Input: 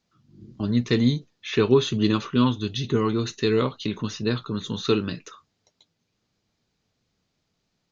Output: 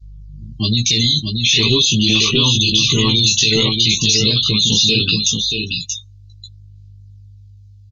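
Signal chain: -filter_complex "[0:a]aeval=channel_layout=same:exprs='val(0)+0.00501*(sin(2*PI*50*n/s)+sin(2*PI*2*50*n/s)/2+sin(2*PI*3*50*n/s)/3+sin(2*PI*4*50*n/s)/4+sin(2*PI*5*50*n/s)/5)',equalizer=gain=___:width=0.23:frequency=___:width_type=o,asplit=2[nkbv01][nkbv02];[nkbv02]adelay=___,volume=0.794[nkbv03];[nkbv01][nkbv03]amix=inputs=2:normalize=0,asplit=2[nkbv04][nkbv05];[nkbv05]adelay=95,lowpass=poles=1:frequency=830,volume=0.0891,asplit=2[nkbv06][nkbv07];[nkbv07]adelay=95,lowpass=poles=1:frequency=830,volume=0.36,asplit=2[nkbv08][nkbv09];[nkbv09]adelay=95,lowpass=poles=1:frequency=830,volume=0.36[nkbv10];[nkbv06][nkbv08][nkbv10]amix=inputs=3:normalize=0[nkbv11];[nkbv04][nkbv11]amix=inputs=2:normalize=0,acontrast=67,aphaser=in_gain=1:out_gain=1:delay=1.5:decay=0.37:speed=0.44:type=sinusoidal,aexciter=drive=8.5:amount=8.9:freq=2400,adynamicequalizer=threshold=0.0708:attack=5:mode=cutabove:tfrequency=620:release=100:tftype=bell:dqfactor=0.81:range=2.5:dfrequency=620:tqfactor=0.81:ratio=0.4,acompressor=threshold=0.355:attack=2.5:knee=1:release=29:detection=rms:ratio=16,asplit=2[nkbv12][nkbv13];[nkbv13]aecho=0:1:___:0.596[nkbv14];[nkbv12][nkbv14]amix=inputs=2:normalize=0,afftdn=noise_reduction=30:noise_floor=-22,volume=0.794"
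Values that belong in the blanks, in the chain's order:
9, 140, 18, 630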